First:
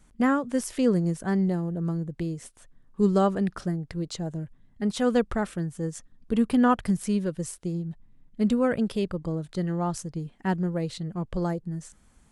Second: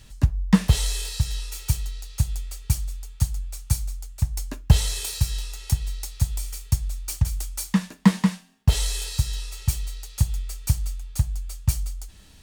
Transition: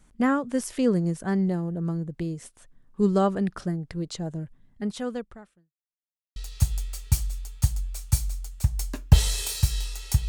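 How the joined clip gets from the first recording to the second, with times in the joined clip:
first
4.70–5.75 s: fade out quadratic
5.75–6.36 s: mute
6.36 s: go over to second from 1.94 s

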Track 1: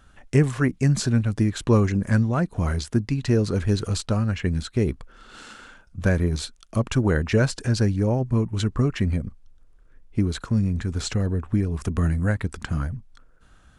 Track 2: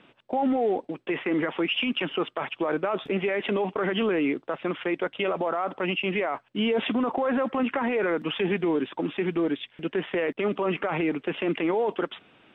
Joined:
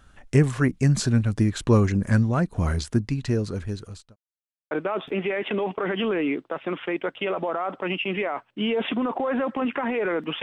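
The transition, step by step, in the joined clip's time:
track 1
2.89–4.16 s: fade out linear
4.16–4.71 s: mute
4.71 s: go over to track 2 from 2.69 s

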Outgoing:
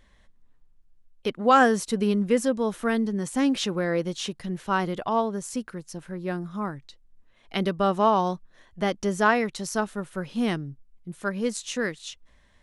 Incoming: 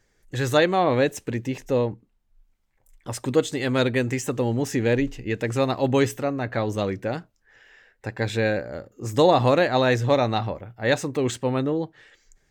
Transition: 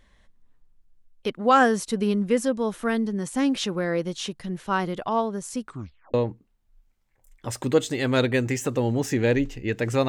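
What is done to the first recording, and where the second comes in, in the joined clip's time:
outgoing
5.63 s: tape stop 0.51 s
6.14 s: go over to incoming from 1.76 s

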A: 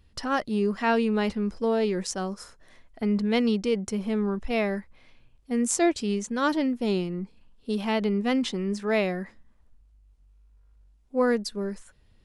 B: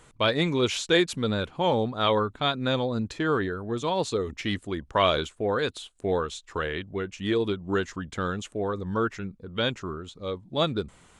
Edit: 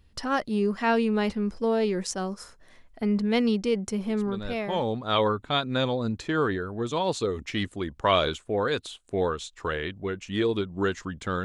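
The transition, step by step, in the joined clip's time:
A
4.63 s: go over to B from 1.54 s, crossfade 1.14 s linear

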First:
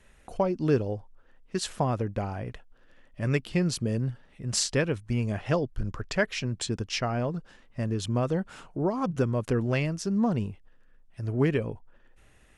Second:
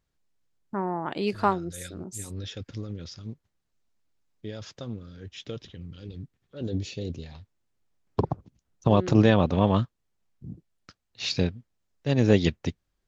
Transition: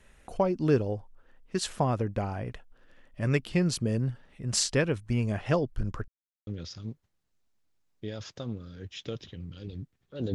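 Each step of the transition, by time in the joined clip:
first
6.08–6.47 s: mute
6.47 s: go over to second from 2.88 s

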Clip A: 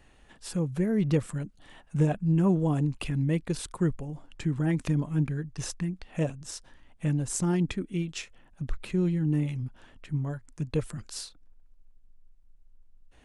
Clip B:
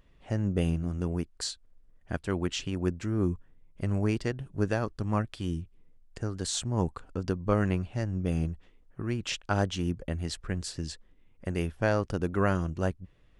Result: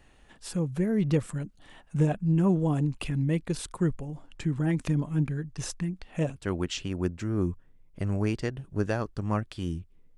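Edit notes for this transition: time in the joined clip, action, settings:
clip A
6.36 s: go over to clip B from 2.18 s

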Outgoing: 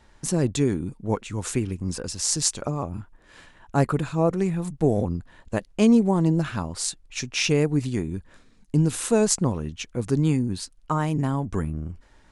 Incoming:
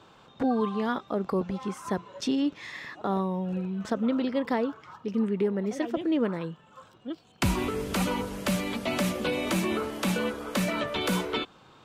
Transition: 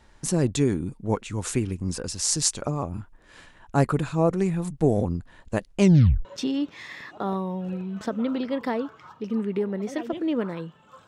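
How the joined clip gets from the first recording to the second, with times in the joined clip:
outgoing
5.80 s: tape stop 0.45 s
6.25 s: go over to incoming from 2.09 s

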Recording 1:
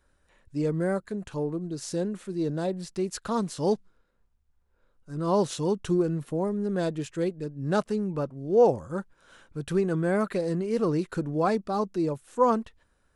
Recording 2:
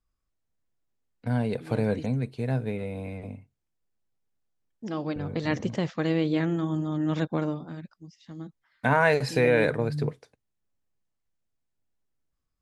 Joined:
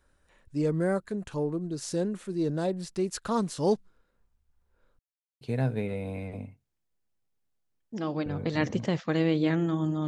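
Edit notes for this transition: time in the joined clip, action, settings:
recording 1
4.99–5.41 s: mute
5.41 s: go over to recording 2 from 2.31 s

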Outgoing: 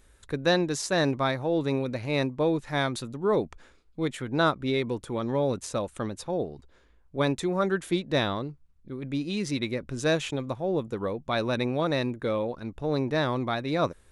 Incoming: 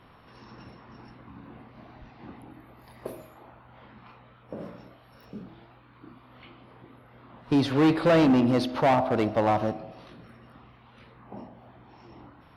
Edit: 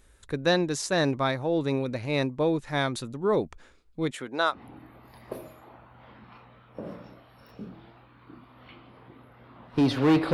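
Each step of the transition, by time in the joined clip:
outgoing
4.10–4.63 s: high-pass 140 Hz -> 1.3 kHz
4.56 s: go over to incoming from 2.30 s, crossfade 0.14 s

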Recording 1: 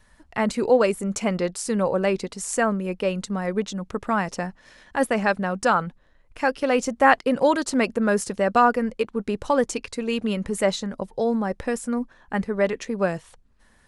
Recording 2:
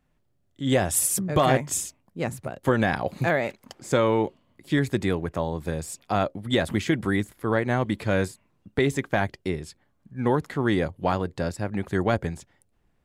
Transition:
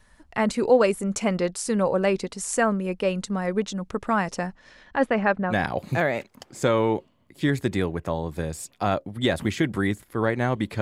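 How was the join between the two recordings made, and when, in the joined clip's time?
recording 1
4.52–5.55 s: low-pass 8.3 kHz -> 1.6 kHz
5.52 s: go over to recording 2 from 2.81 s, crossfade 0.06 s

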